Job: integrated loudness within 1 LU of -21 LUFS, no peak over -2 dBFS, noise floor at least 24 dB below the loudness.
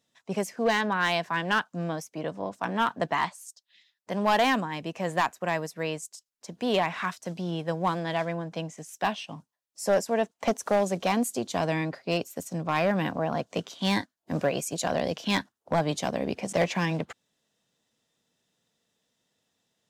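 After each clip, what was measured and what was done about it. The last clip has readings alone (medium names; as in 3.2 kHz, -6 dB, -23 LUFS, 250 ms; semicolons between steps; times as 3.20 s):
clipped samples 0.5%; clipping level -16.5 dBFS; loudness -28.5 LUFS; peak level -16.5 dBFS; loudness target -21.0 LUFS
-> clip repair -16.5 dBFS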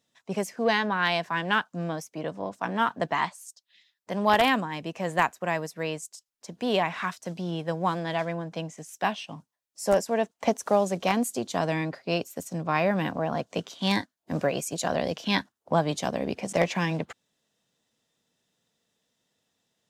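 clipped samples 0.0%; loudness -28.0 LUFS; peak level -7.5 dBFS; loudness target -21.0 LUFS
-> trim +7 dB; peak limiter -2 dBFS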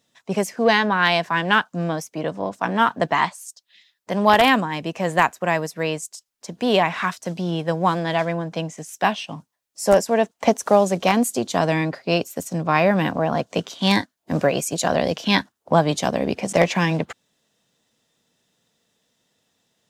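loudness -21.0 LUFS; peak level -2.0 dBFS; noise floor -76 dBFS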